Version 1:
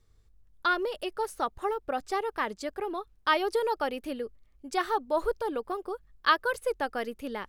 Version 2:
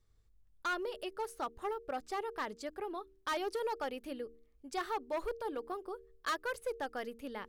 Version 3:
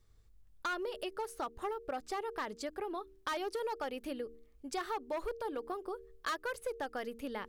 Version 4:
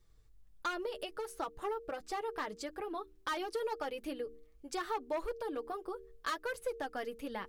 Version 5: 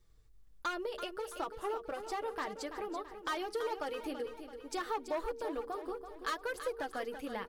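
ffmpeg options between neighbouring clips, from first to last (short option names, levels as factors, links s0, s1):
-af "volume=15,asoftclip=hard,volume=0.0668,bandreject=f=76.99:t=h:w=4,bandreject=f=153.98:t=h:w=4,bandreject=f=230.97:t=h:w=4,bandreject=f=307.96:t=h:w=4,bandreject=f=384.95:t=h:w=4,bandreject=f=461.94:t=h:w=4,volume=0.447"
-af "acompressor=threshold=0.00794:ratio=2.5,volume=1.78"
-af "flanger=delay=5.7:depth=1.4:regen=-27:speed=1.5:shape=triangular,volume=1.5"
-af "aecho=1:1:333|666|999|1332|1665:0.316|0.155|0.0759|0.0372|0.0182"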